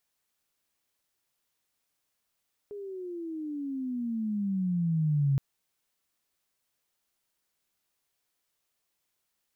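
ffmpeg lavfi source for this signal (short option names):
-f lavfi -i "aevalsrc='pow(10,(-21.5+15.5*(t/2.67-1))/20)*sin(2*PI*416*2.67/(-19.5*log(2)/12)*(exp(-19.5*log(2)/12*t/2.67)-1))':d=2.67:s=44100"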